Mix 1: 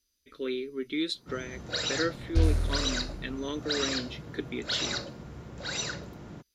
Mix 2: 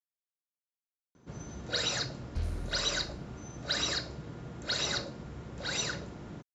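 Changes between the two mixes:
speech: muted; second sound -11.0 dB

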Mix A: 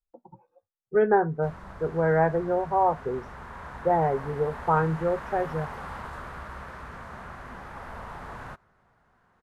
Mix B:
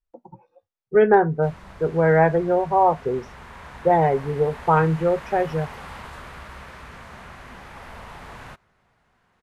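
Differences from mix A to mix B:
speech +6.0 dB; master: add resonant high shelf 1.9 kHz +6 dB, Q 1.5

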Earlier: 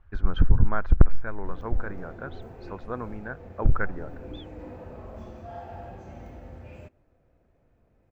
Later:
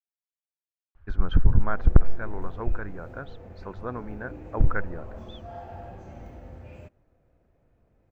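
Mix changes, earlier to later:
speech: entry +0.95 s; reverb: off

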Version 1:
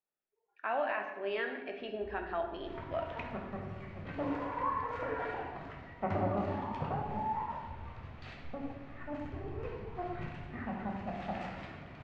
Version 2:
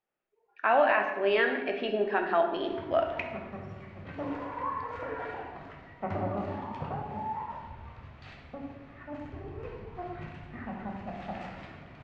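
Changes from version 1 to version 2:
speech +10.0 dB; first sound: muted

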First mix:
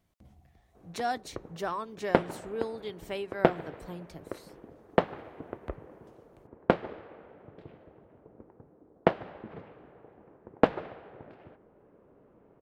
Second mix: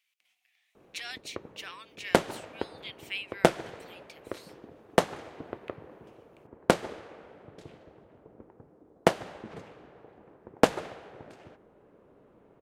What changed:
speech: add resonant high-pass 2.5 kHz, resonance Q 3.6; background: remove distance through air 400 m

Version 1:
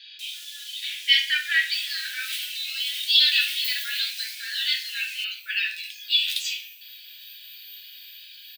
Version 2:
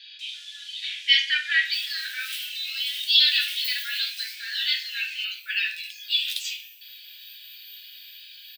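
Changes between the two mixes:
first sound: add distance through air 83 m; second sound: send off

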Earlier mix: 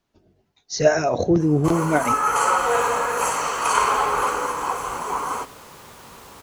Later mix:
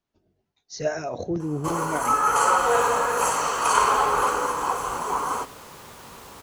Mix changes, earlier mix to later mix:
speech -9.5 dB; first sound: add peaking EQ 2.2 kHz -5 dB 0.45 oct

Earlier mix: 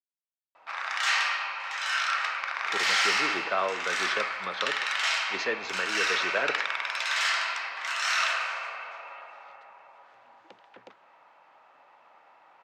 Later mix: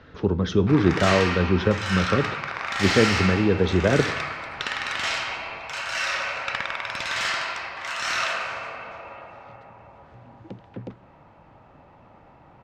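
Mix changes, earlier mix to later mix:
speech: entry -2.50 s; master: remove high-pass 910 Hz 12 dB/octave

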